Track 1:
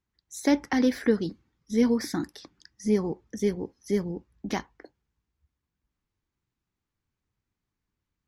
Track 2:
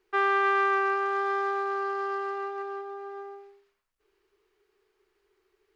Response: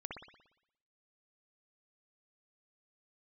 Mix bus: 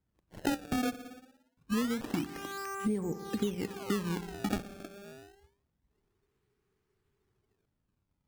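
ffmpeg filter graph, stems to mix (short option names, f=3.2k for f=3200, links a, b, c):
-filter_complex "[0:a]equalizer=f=150:t=o:w=1.7:g=4,adynamicsmooth=sensitivity=6.5:basefreq=2.7k,volume=1dB,asplit=3[a][b][c];[a]atrim=end=0.95,asetpts=PTS-STARTPTS,afade=t=out:st=0.946:d=0.004:c=hsin[d];[b]atrim=start=0.95:end=1.57,asetpts=PTS-STARTPTS,volume=0[e];[c]atrim=start=1.57,asetpts=PTS-STARTPTS,afade=t=in:d=0.004:c=hsin[f];[d][e][f]concat=n=3:v=0:a=1,asplit=3[g][h][i];[h]volume=-10dB[j];[1:a]alimiter=limit=-21dB:level=0:latency=1,adelay=1900,volume=-10.5dB,asplit=2[k][l];[l]volume=-12dB[m];[i]apad=whole_len=337465[n];[k][n]sidechaincompress=threshold=-44dB:ratio=3:attack=27:release=237[o];[2:a]atrim=start_sample=2205[p];[j][m]amix=inputs=2:normalize=0[q];[q][p]afir=irnorm=-1:irlink=0[r];[g][o][r]amix=inputs=3:normalize=0,acrusher=samples=25:mix=1:aa=0.000001:lfo=1:lforange=40:lforate=0.26,acompressor=threshold=-28dB:ratio=16"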